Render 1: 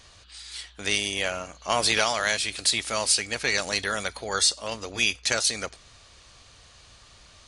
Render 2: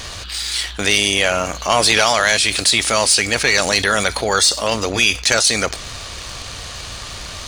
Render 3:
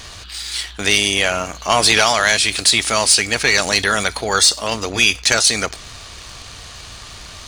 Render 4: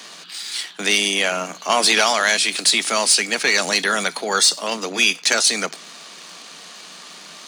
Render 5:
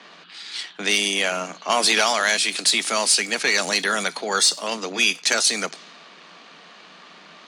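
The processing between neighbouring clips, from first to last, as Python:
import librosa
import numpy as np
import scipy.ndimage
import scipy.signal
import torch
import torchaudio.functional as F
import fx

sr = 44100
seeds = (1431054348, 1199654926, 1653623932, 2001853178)

y1 = fx.leveller(x, sr, passes=1)
y1 = fx.env_flatten(y1, sr, amount_pct=50)
y1 = y1 * 10.0 ** (4.0 / 20.0)
y2 = fx.peak_eq(y1, sr, hz=540.0, db=-5.0, octaves=0.22)
y2 = fx.upward_expand(y2, sr, threshold_db=-26.0, expansion=1.5)
y2 = y2 * 10.0 ** (2.0 / 20.0)
y3 = scipy.signal.sosfilt(scipy.signal.butter(16, 160.0, 'highpass', fs=sr, output='sos'), y2)
y3 = y3 * 10.0 ** (-2.5 / 20.0)
y4 = fx.env_lowpass(y3, sr, base_hz=2300.0, full_db=-16.5)
y4 = y4 * 10.0 ** (-2.5 / 20.0)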